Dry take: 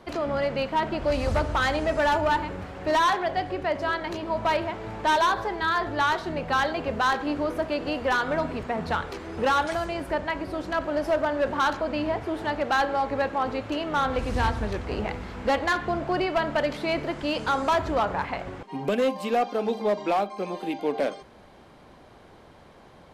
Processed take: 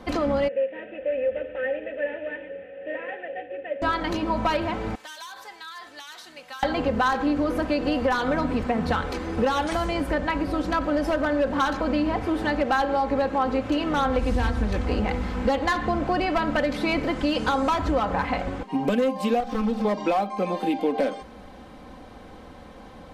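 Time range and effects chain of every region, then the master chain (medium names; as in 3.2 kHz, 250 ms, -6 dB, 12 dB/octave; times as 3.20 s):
0.48–3.82 s: CVSD coder 16 kbps + vowel filter e
4.95–6.63 s: differentiator + compression 10:1, threshold -39 dBFS
19.40–19.85 s: comb filter that takes the minimum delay 3.9 ms + peaking EQ 220 Hz +7.5 dB 0.24 oct + compression 2:1, threshold -33 dBFS
whole clip: bass shelf 300 Hz +5.5 dB; comb 3.9 ms, depth 57%; compression, threshold -23 dBFS; trim +3.5 dB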